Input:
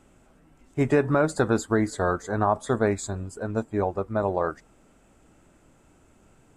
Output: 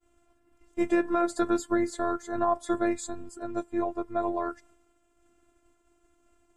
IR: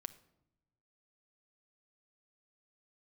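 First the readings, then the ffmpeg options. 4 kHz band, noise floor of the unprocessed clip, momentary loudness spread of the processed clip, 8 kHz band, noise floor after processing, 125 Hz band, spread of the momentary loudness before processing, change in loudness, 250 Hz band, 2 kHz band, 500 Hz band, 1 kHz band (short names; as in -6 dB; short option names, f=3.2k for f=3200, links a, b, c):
-3.5 dB, -59 dBFS, 10 LU, -4.0 dB, -69 dBFS, -19.5 dB, 8 LU, -4.0 dB, -1.5 dB, -6.5 dB, -5.0 dB, -2.5 dB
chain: -af "afftfilt=real='hypot(re,im)*cos(PI*b)':imag='0':win_size=512:overlap=0.75,agate=range=-33dB:threshold=-54dB:ratio=3:detection=peak"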